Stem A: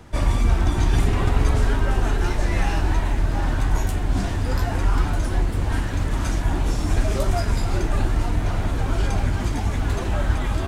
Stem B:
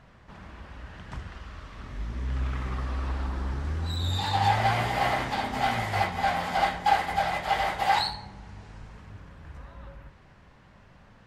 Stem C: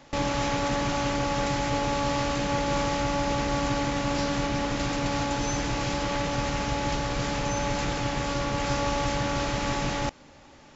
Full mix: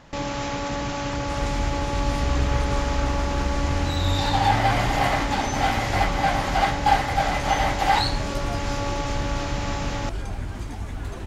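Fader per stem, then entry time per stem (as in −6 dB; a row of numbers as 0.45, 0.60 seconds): −9.0, +3.0, −1.5 decibels; 1.15, 0.00, 0.00 seconds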